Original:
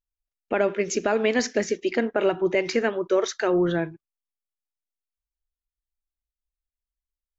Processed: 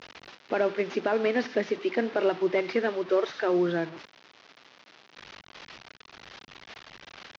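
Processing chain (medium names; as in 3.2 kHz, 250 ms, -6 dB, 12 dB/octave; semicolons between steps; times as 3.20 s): one-bit delta coder 32 kbps, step -32 dBFS; band-pass 190–3600 Hz; trim -2.5 dB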